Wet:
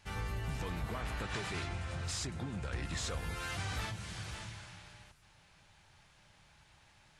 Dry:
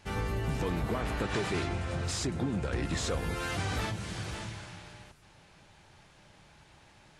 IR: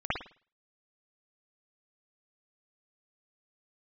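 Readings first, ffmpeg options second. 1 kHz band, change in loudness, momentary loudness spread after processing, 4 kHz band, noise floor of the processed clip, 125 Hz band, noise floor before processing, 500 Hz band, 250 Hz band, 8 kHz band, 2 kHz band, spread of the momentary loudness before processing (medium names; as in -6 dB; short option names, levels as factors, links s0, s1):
-6.0 dB, -6.0 dB, 10 LU, -3.5 dB, -65 dBFS, -5.5 dB, -59 dBFS, -10.5 dB, -10.0 dB, -3.5 dB, -4.5 dB, 10 LU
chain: -af "equalizer=f=340:t=o:w=2.1:g=-8.5,volume=0.668"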